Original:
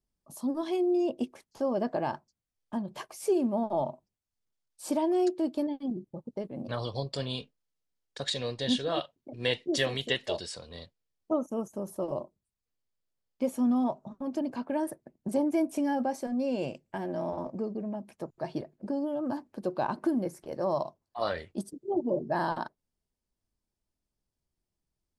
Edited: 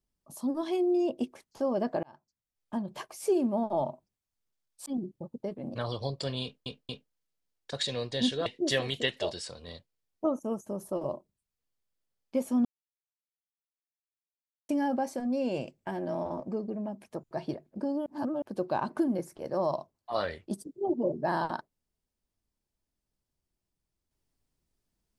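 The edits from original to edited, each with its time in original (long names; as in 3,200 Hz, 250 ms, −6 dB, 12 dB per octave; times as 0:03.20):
0:02.03–0:02.75: fade in linear
0:04.86–0:05.79: remove
0:07.36: stutter 0.23 s, 3 plays
0:08.93–0:09.53: remove
0:13.72–0:15.76: silence
0:19.13–0:19.49: reverse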